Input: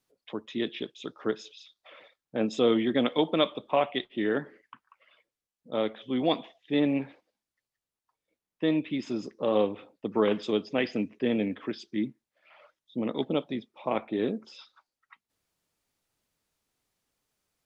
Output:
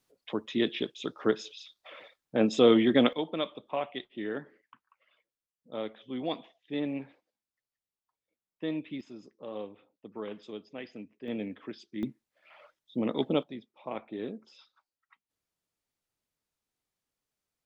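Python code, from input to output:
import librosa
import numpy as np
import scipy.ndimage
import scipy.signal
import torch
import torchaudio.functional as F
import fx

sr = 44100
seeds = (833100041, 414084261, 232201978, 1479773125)

y = fx.gain(x, sr, db=fx.steps((0.0, 3.0), (3.13, -7.5), (9.01, -14.5), (11.28, -7.5), (12.03, 0.5), (13.43, -8.5)))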